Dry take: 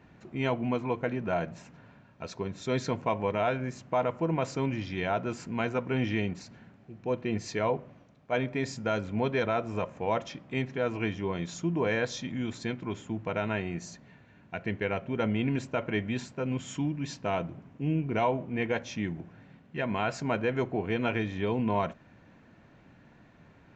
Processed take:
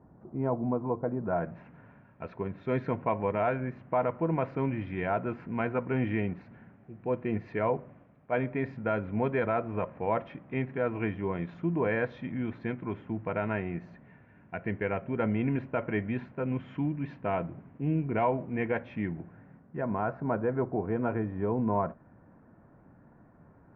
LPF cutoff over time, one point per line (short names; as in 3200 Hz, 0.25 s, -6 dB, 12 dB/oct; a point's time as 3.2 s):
LPF 24 dB/oct
1.15 s 1100 Hz
1.61 s 2200 Hz
19.11 s 2200 Hz
19.78 s 1400 Hz